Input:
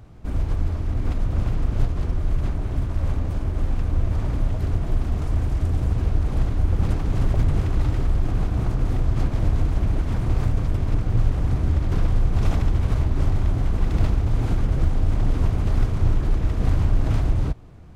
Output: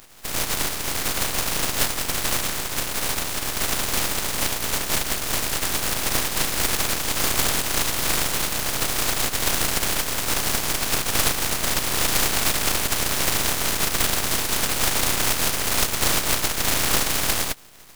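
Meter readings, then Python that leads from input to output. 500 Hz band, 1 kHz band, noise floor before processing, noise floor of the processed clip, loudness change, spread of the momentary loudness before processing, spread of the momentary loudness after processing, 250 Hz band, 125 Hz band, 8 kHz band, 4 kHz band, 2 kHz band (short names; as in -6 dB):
+4.0 dB, +9.0 dB, -27 dBFS, -29 dBFS, +2.5 dB, 4 LU, 4 LU, -3.0 dB, -13.5 dB, n/a, +22.5 dB, +16.0 dB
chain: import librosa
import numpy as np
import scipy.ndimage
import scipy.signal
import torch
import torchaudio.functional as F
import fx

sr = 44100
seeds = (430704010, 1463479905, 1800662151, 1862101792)

y = fx.spec_flatten(x, sr, power=0.19)
y = np.maximum(y, 0.0)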